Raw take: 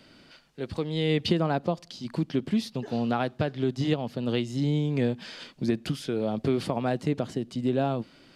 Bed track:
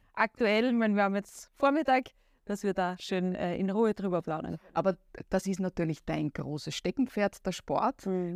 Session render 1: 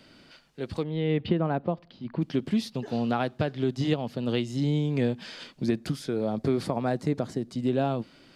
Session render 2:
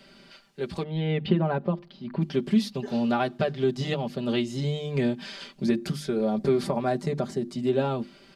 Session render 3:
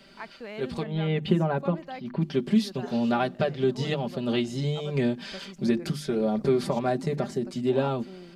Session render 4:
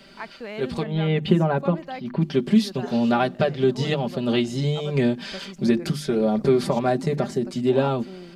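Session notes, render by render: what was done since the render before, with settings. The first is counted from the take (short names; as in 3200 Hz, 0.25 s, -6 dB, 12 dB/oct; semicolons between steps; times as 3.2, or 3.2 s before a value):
0.83–2.22 air absorption 420 m; 5.78–7.56 bell 2900 Hz -8.5 dB 0.44 oct
notches 50/100/150/200/250/300/350 Hz; comb 5.1 ms, depth 82%
add bed track -13.5 dB
gain +4.5 dB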